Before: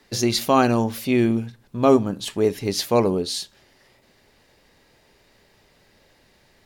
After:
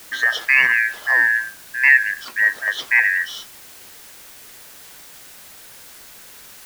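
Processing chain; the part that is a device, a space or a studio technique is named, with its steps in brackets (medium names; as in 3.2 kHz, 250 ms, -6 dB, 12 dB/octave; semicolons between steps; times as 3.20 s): split-band scrambled radio (four frequency bands reordered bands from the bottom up 2143; band-pass 330–2900 Hz; white noise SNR 21 dB); trim +3 dB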